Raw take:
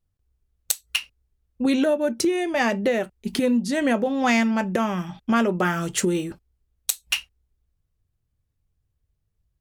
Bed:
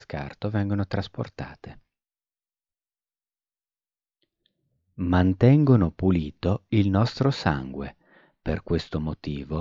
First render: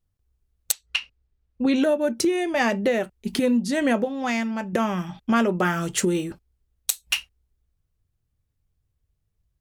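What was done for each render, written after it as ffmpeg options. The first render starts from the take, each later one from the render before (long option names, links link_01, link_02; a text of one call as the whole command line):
ffmpeg -i in.wav -filter_complex "[0:a]asettb=1/sr,asplit=3[link_01][link_02][link_03];[link_01]atrim=end=0.724[link_04];[link_02]atrim=start=0.72:end=1.76,asetpts=PTS-STARTPTS,afade=type=in:duration=0.004:curve=qsin,afade=type=out:start_time=1.036:duration=0.004:curve=qsin,lowpass=4700[link_05];[link_03]atrim=start=1.756[link_06];[link_04][link_05]acrossfade=duration=0.004:curve1=hsin:curve2=qsin[link_07];[link_07][link_06]acrossfade=duration=0.004:curve1=qsin:curve2=hsin,asplit=3[link_08][link_09][link_10];[link_08]atrim=end=4.052[link_11];[link_09]atrim=start=4.048:end=4.732,asetpts=PTS-STARTPTS,volume=-5.5dB[link_12];[link_10]atrim=start=4.728[link_13];[link_11][link_12]acrossfade=duration=0.004:curve1=hsin:curve2=hsin[link_14];[link_14][link_13]acrossfade=duration=0.004:curve1=hsin:curve2=hsin" out.wav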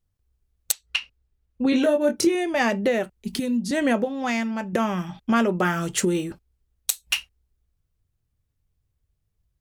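ffmpeg -i in.wav -filter_complex "[0:a]asettb=1/sr,asplit=3[link_01][link_02][link_03];[link_01]atrim=end=1.704[link_04];[link_02]atrim=start=1.7:end=2.35,asetpts=PTS-STARTPTS,afade=type=in:duration=0.004:curve=qsin,afade=type=out:start_time=0.646:duration=0.004:curve=qsin,asplit=2[link_05][link_06];[link_06]adelay=24,volume=-5dB[link_07];[link_05][link_07]amix=inputs=2:normalize=0,atrim=end_sample=28665[link_08];[link_03]atrim=start=2.346[link_09];[link_04][link_08]acrossfade=duration=0.004:curve1=hsin:curve2=qsin[link_10];[link_10][link_09]acrossfade=duration=0.004:curve1=qsin:curve2=hsin,asettb=1/sr,asplit=3[link_11][link_12][link_13];[link_11]atrim=end=3.174[link_14];[link_12]atrim=start=3.17:end=3.71,asetpts=PTS-STARTPTS,afade=type=in:duration=0.004:curve=qsin,afade=type=out:start_time=0.536:duration=0.004:curve=qsin,acrossover=split=260|3000[link_15][link_16][link_17];[link_16]acompressor=threshold=-50dB:ratio=1.5:attack=3.2:release=140:knee=2.83:detection=peak[link_18];[link_15][link_18][link_17]amix=inputs=3:normalize=0[link_19];[link_13]atrim=start=3.706[link_20];[link_14][link_19]acrossfade=duration=0.004:curve1=hsin:curve2=qsin[link_21];[link_21][link_20]acrossfade=duration=0.004:curve1=qsin:curve2=hsin" out.wav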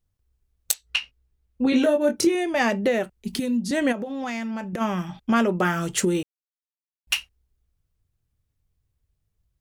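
ffmpeg -i in.wav -filter_complex "[0:a]asettb=1/sr,asplit=3[link_01][link_02][link_03];[link_01]atrim=end=0.714[link_04];[link_02]atrim=start=0.71:end=1.85,asetpts=PTS-STARTPTS,afade=type=in:duration=0.004:curve=qsin,afade=type=out:start_time=1.136:duration=0.004:curve=qsin,asplit=2[link_05][link_06];[link_06]adelay=16,volume=-8dB[link_07];[link_05][link_07]amix=inputs=2:normalize=0,atrim=end_sample=50274[link_08];[link_03]atrim=start=1.846[link_09];[link_04][link_08]acrossfade=duration=0.004:curve1=hsin:curve2=qsin[link_10];[link_10][link_09]acrossfade=duration=0.004:curve1=qsin:curve2=hsin,asplit=3[link_11][link_12][link_13];[link_11]afade=type=out:start_time=3.91:duration=0.02[link_14];[link_12]acompressor=threshold=-26dB:ratio=6:attack=3.2:release=140:knee=1:detection=peak,afade=type=in:start_time=3.91:duration=0.02,afade=type=out:start_time=4.8:duration=0.02[link_15];[link_13]afade=type=in:start_time=4.8:duration=0.02[link_16];[link_14][link_15][link_16]amix=inputs=3:normalize=0,asplit=3[link_17][link_18][link_19];[link_17]atrim=end=6.23,asetpts=PTS-STARTPTS,afade=type=out:start_time=6.226:duration=0.004:curve=hsin[link_20];[link_18]atrim=start=6.23:end=7.07,asetpts=PTS-STARTPTS,volume=0[link_21];[link_19]atrim=start=7.07,asetpts=PTS-STARTPTS,afade=type=in:duration=0.004:curve=hsin[link_22];[link_20][link_21][link_22]concat=n=3:v=0:a=1" out.wav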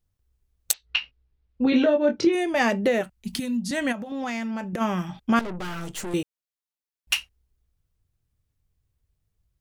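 ffmpeg -i in.wav -filter_complex "[0:a]asplit=3[link_01][link_02][link_03];[link_01]afade=type=out:start_time=0.72:duration=0.02[link_04];[link_02]lowpass=frequency=4700:width=0.5412,lowpass=frequency=4700:width=1.3066,afade=type=in:start_time=0.72:duration=0.02,afade=type=out:start_time=2.32:duration=0.02[link_05];[link_03]afade=type=in:start_time=2.32:duration=0.02[link_06];[link_04][link_05][link_06]amix=inputs=3:normalize=0,asettb=1/sr,asplit=3[link_07][link_08][link_09];[link_07]atrim=end=3.014[link_10];[link_08]atrim=start=3.01:end=4.12,asetpts=PTS-STARTPTS,afade=type=in:duration=0.004:curve=qsin,afade=type=out:start_time=1.106:duration=0.004:curve=qsin,equalizer=frequency=410:width_type=o:width=0.77:gain=-12[link_11];[link_09]atrim=start=4.116[link_12];[link_10][link_11]acrossfade=duration=0.004:curve1=hsin:curve2=qsin[link_13];[link_13][link_12]acrossfade=duration=0.004:curve1=qsin:curve2=hsin,asettb=1/sr,asplit=3[link_14][link_15][link_16];[link_14]atrim=end=5.394[link_17];[link_15]atrim=start=5.39:end=6.14,asetpts=PTS-STARTPTS,afade=type=in:duration=0.004:curve=qsin,afade=type=out:start_time=0.746:duration=0.004:curve=qsin,aeval=exprs='(tanh(35.5*val(0)+0.7)-tanh(0.7))/35.5':channel_layout=same[link_18];[link_16]atrim=start=6.136[link_19];[link_17][link_18]acrossfade=duration=0.004:curve1=hsin:curve2=qsin[link_20];[link_20][link_19]acrossfade=duration=0.004:curve1=qsin:curve2=hsin" out.wav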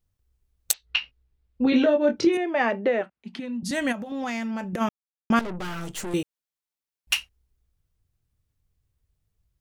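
ffmpeg -i in.wav -filter_complex "[0:a]asettb=1/sr,asplit=3[link_01][link_02][link_03];[link_01]atrim=end=2.374[link_04];[link_02]atrim=start=2.37:end=3.63,asetpts=PTS-STARTPTS,afade=type=in:duration=0.004:curve=qsin,afade=type=out:start_time=1.256:duration=0.004:curve=qsin,highpass=290,lowpass=2300[link_05];[link_03]atrim=start=3.626[link_06];[link_04][link_05]acrossfade=duration=0.004:curve1=hsin:curve2=qsin[link_07];[link_07][link_06]acrossfade=duration=0.004:curve1=qsin:curve2=hsin,asplit=3[link_08][link_09][link_10];[link_08]atrim=end=4.89,asetpts=PTS-STARTPTS,afade=type=out:start_time=4.886:duration=0.004:curve=hsin[link_11];[link_09]atrim=start=4.89:end=5.3,asetpts=PTS-STARTPTS,volume=0[link_12];[link_10]atrim=start=5.3,asetpts=PTS-STARTPTS,afade=type=in:duration=0.004:curve=hsin[link_13];[link_11][link_12][link_13]concat=n=3:v=0:a=1" out.wav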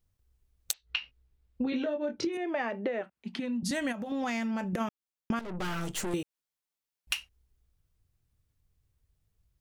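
ffmpeg -i in.wav -af "acompressor=threshold=-28dB:ratio=16" out.wav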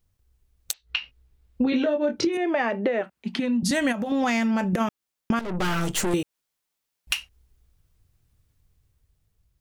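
ffmpeg -i in.wav -filter_complex "[0:a]dynaudnorm=framelen=180:gausssize=11:maxgain=4dB,asplit=2[link_01][link_02];[link_02]alimiter=limit=-19dB:level=0:latency=1:release=247,volume=-2.5dB[link_03];[link_01][link_03]amix=inputs=2:normalize=0" out.wav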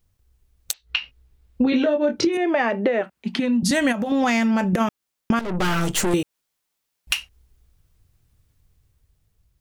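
ffmpeg -i in.wav -af "volume=3.5dB,alimiter=limit=-3dB:level=0:latency=1" out.wav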